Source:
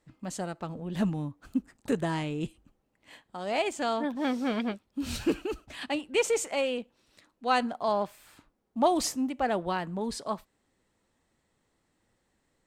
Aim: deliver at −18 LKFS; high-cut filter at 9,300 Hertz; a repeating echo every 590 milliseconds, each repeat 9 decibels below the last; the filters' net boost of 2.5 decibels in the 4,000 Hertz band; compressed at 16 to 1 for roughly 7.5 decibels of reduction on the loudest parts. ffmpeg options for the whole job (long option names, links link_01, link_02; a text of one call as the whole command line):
ffmpeg -i in.wav -af "lowpass=9300,equalizer=frequency=4000:width_type=o:gain=3.5,acompressor=threshold=-27dB:ratio=16,aecho=1:1:590|1180|1770|2360:0.355|0.124|0.0435|0.0152,volume=16.5dB" out.wav